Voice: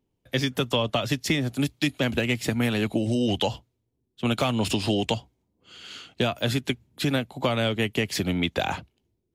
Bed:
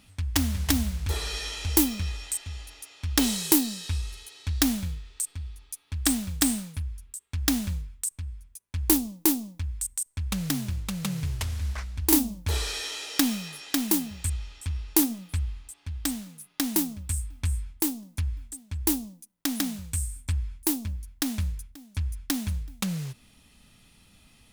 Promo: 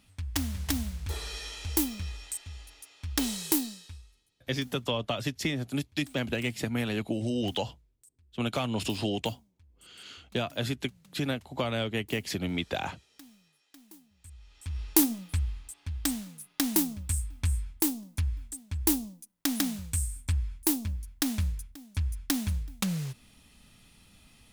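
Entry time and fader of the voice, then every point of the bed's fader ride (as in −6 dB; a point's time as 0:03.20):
4.15 s, −6.0 dB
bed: 0:03.64 −6 dB
0:04.27 −29 dB
0:14.09 −29 dB
0:14.82 −0.5 dB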